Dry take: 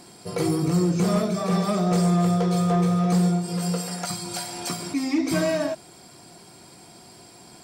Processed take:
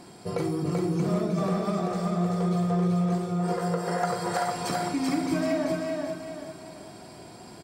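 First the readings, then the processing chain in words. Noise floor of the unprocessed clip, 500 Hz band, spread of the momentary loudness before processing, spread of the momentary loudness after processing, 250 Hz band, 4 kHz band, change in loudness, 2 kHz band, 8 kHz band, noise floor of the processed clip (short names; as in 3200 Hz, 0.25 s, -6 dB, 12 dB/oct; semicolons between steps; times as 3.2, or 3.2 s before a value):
-48 dBFS, -2.0 dB, 9 LU, 17 LU, -4.0 dB, -6.5 dB, -4.0 dB, -2.0 dB, -8.5 dB, -46 dBFS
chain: spectral gain 3.4–4.5, 360–2100 Hz +10 dB; high shelf 3100 Hz -9 dB; compressor, threshold -27 dBFS, peak gain reduction 10.5 dB; doubler 42 ms -12 dB; feedback echo 0.386 s, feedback 40%, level -3 dB; gain +1.5 dB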